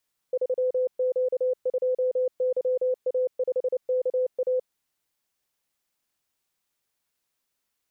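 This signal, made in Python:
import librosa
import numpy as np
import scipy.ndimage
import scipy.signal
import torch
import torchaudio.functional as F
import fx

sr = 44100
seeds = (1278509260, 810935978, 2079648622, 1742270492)

y = fx.morse(sr, text='3Q2YA5KA', wpm=29, hz=508.0, level_db=-21.0)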